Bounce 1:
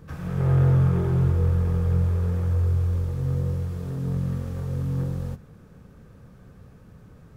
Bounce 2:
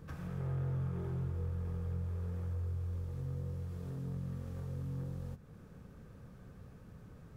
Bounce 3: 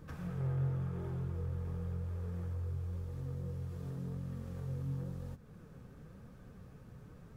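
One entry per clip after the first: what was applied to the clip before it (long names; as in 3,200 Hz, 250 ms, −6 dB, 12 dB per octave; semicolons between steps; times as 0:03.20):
downward compressor 2 to 1, threshold −39 dBFS, peak gain reduction 13 dB; level −5 dB
flanger 0.94 Hz, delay 3.1 ms, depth 5.3 ms, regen +67%; level +4.5 dB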